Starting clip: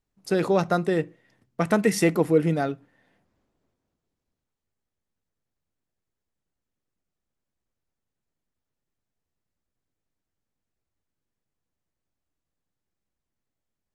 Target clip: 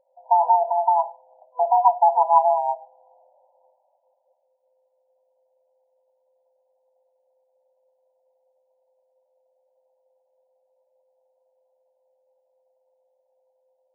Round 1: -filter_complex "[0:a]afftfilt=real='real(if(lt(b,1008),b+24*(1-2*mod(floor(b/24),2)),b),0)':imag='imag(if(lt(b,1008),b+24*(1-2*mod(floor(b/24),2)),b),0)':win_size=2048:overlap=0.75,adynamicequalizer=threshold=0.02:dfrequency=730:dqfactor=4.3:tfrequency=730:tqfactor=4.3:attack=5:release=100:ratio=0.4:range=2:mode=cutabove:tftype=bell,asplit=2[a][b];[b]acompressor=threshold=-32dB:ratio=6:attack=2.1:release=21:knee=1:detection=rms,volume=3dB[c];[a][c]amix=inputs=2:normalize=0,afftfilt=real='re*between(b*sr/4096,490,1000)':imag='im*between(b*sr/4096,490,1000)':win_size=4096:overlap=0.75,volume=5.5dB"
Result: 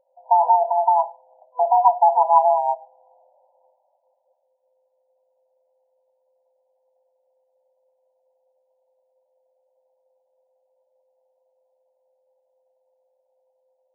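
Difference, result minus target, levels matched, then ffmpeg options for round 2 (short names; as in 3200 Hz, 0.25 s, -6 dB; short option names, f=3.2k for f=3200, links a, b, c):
compressor: peak gain reduction -8 dB
-filter_complex "[0:a]afftfilt=real='real(if(lt(b,1008),b+24*(1-2*mod(floor(b/24),2)),b),0)':imag='imag(if(lt(b,1008),b+24*(1-2*mod(floor(b/24),2)),b),0)':win_size=2048:overlap=0.75,adynamicequalizer=threshold=0.02:dfrequency=730:dqfactor=4.3:tfrequency=730:tqfactor=4.3:attack=5:release=100:ratio=0.4:range=2:mode=cutabove:tftype=bell,asplit=2[a][b];[b]acompressor=threshold=-41.5dB:ratio=6:attack=2.1:release=21:knee=1:detection=rms,volume=3dB[c];[a][c]amix=inputs=2:normalize=0,afftfilt=real='re*between(b*sr/4096,490,1000)':imag='im*between(b*sr/4096,490,1000)':win_size=4096:overlap=0.75,volume=5.5dB"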